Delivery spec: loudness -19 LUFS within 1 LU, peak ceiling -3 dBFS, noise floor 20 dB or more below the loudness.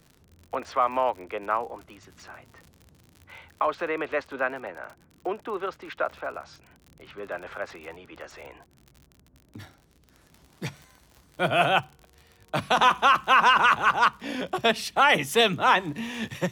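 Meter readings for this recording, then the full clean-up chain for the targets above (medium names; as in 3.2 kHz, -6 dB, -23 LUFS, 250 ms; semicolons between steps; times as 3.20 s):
tick rate 54 per s; loudness -24.5 LUFS; peak level -7.5 dBFS; loudness target -19.0 LUFS
-> de-click; trim +5.5 dB; peak limiter -3 dBFS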